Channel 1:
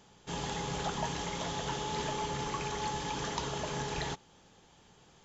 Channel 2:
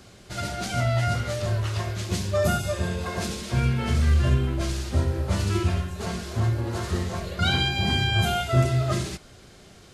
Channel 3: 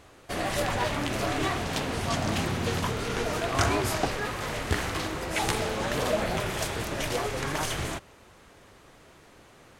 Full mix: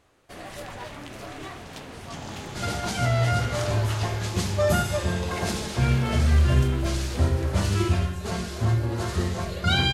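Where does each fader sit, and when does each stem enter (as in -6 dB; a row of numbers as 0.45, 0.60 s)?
-5.5, +1.0, -10.0 dB; 1.85, 2.25, 0.00 s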